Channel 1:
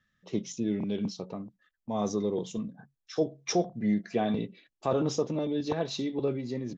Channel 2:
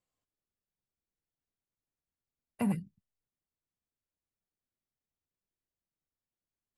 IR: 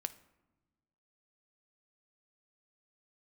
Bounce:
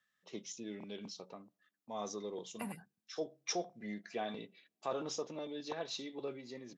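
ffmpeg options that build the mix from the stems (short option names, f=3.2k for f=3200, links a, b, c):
-filter_complex "[0:a]volume=-5.5dB,asplit=2[a][b];[b]volume=-17.5dB[c];[1:a]volume=-2.5dB[d];[2:a]atrim=start_sample=2205[e];[c][e]afir=irnorm=-1:irlink=0[f];[a][d][f]amix=inputs=3:normalize=0,highpass=f=890:p=1"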